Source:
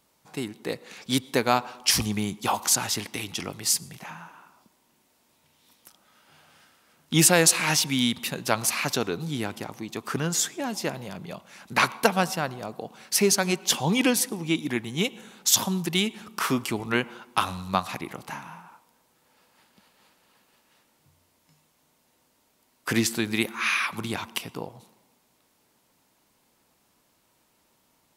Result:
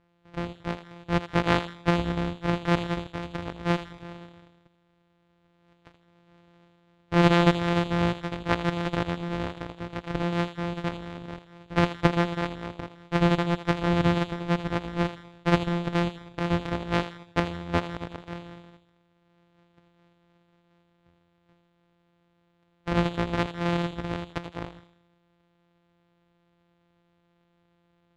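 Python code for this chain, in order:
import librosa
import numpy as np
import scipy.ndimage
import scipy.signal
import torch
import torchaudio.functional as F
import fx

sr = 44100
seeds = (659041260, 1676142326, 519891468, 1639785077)

y = np.r_[np.sort(x[:len(x) // 256 * 256].reshape(-1, 256), axis=1).ravel(), x[len(x) // 256 * 256:]]
y = scipy.signal.sosfilt(scipy.signal.butter(2, 2800.0, 'lowpass', fs=sr, output='sos'), y)
y = fx.echo_thinned(y, sr, ms=81, feedback_pct=37, hz=580.0, wet_db=-10.0)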